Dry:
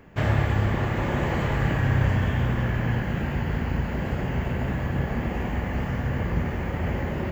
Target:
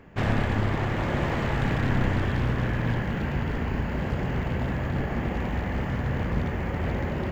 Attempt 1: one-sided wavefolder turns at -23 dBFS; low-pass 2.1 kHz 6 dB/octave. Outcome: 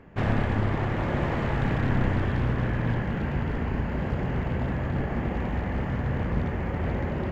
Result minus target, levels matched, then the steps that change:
8 kHz band -7.0 dB
change: low-pass 6.2 kHz 6 dB/octave

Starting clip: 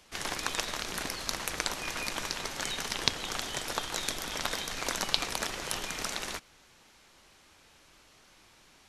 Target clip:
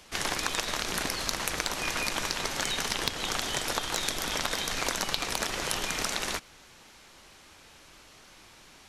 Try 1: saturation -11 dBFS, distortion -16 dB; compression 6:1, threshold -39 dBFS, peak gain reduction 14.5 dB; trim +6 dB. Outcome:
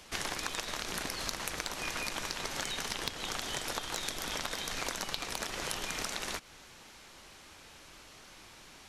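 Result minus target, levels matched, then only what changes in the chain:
compression: peak gain reduction +6.5 dB
change: compression 6:1, threshold -31 dBFS, peak gain reduction 7.5 dB

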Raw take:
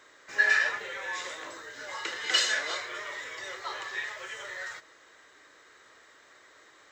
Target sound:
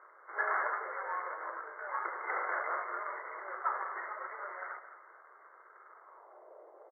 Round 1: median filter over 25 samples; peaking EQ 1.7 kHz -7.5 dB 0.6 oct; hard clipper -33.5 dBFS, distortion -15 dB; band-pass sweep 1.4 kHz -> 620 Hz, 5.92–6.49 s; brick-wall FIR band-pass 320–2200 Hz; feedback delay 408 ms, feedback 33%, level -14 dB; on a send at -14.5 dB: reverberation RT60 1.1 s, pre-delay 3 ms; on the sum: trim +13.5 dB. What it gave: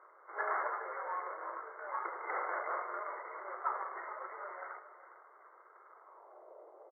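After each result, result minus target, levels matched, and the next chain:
echo 185 ms late; 2 kHz band -3.0 dB
median filter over 25 samples; peaking EQ 1.7 kHz -7.5 dB 0.6 oct; hard clipper -33.5 dBFS, distortion -15 dB; band-pass sweep 1.4 kHz -> 620 Hz, 5.92–6.49 s; brick-wall FIR band-pass 320–2200 Hz; feedback delay 223 ms, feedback 33%, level -14 dB; on a send at -14.5 dB: reverberation RT60 1.1 s, pre-delay 3 ms; on the sum: trim +13.5 dB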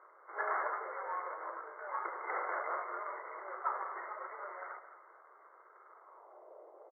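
2 kHz band -3.0 dB
median filter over 25 samples; hard clipper -33.5 dBFS, distortion -14 dB; band-pass sweep 1.4 kHz -> 620 Hz, 5.92–6.49 s; brick-wall FIR band-pass 320–2200 Hz; feedback delay 223 ms, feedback 33%, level -14 dB; on a send at -14.5 dB: reverberation RT60 1.1 s, pre-delay 3 ms; on the sum: trim +13.5 dB

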